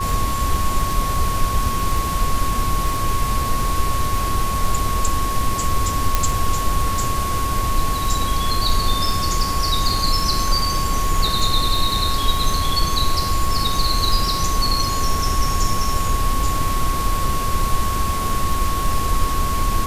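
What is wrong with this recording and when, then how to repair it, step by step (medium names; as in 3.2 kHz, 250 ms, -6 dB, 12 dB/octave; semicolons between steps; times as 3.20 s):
crackle 24 per s -23 dBFS
whine 1.1 kHz -23 dBFS
6.15 s: pop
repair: de-click; band-stop 1.1 kHz, Q 30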